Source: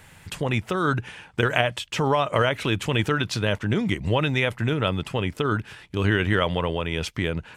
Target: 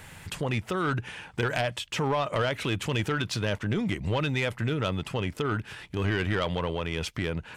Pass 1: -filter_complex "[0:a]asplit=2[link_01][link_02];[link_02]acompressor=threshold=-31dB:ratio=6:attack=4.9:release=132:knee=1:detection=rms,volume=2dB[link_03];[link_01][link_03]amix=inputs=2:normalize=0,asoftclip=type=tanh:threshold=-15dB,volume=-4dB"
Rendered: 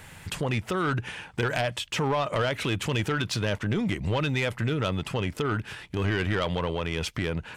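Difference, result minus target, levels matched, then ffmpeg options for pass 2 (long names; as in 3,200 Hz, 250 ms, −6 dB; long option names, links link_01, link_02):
downward compressor: peak gain reduction −9 dB
-filter_complex "[0:a]asplit=2[link_01][link_02];[link_02]acompressor=threshold=-41.5dB:ratio=6:attack=4.9:release=132:knee=1:detection=rms,volume=2dB[link_03];[link_01][link_03]amix=inputs=2:normalize=0,asoftclip=type=tanh:threshold=-15dB,volume=-4dB"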